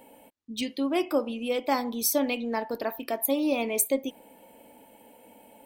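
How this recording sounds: noise floor -55 dBFS; spectral tilt -2.5 dB/oct

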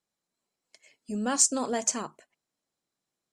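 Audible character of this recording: noise floor -87 dBFS; spectral tilt -1.5 dB/oct

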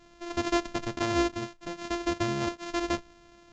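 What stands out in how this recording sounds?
a buzz of ramps at a fixed pitch in blocks of 128 samples; µ-law

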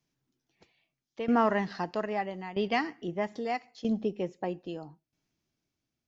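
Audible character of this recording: tremolo saw down 0.78 Hz, depth 80%

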